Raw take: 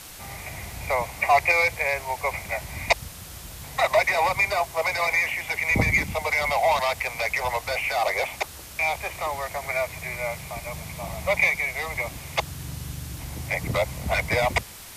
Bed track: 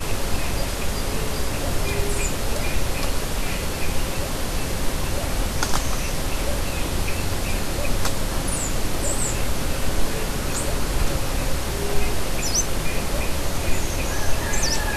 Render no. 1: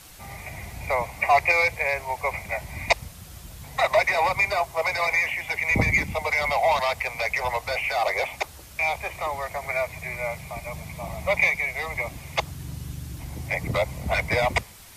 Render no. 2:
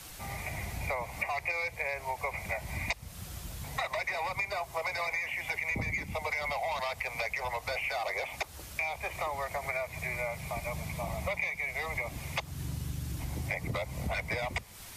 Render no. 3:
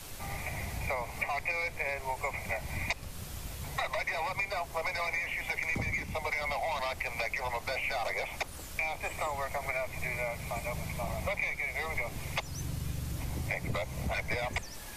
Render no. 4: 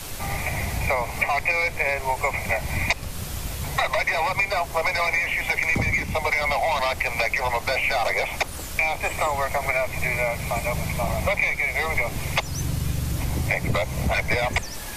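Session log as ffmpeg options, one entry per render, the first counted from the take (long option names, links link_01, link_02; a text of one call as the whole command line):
ffmpeg -i in.wav -af "afftdn=noise_reduction=6:noise_floor=-42" out.wav
ffmpeg -i in.wav -filter_complex "[0:a]acrossover=split=250|1200|1800[link_01][link_02][link_03][link_04];[link_02]alimiter=limit=-20.5dB:level=0:latency=1[link_05];[link_01][link_05][link_03][link_04]amix=inputs=4:normalize=0,acompressor=threshold=-31dB:ratio=6" out.wav
ffmpeg -i in.wav -i bed.wav -filter_complex "[1:a]volume=-24.5dB[link_01];[0:a][link_01]amix=inputs=2:normalize=0" out.wav
ffmpeg -i in.wav -af "volume=10.5dB" out.wav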